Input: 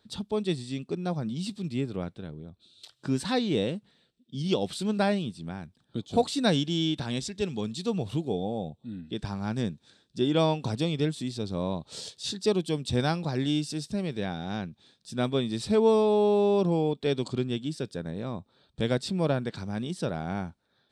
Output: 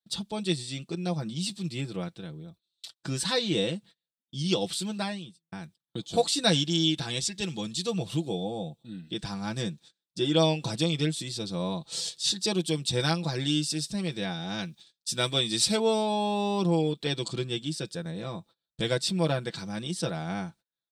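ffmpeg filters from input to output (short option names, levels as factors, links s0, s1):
-filter_complex "[0:a]asettb=1/sr,asplit=3[s0][s1][s2];[s0]atrim=end=14.584[s3];[s1]atrim=start=14.58:end=15.77,asetpts=PTS-STARTPTS,afade=t=in:d=0.004:c=qsin,afade=t=out:st=1.186:d=0.004:c=qsin,highshelf=f=2400:g=8[s4];[s2]atrim=start=15.766[s5];[s3][s4]acrossfade=d=0.004:c1=hsin:c2=qsin[s6];[s6][s5]acrossfade=d=0.004:c1=qsin:c2=hsin,asplit=2[s7][s8];[s7]atrim=end=5.52,asetpts=PTS-STARTPTS,afade=t=out:st=4.6:d=0.92[s9];[s8]atrim=start=5.52,asetpts=PTS-STARTPTS,afade=t=in:d=0.004:c=hsin[s10];[s9][s10]concat=n=2:v=0:a=1,agate=range=0.0316:threshold=0.00316:ratio=16:detection=peak,highshelf=f=2300:g=11,aecho=1:1:6:0.7,volume=0.668"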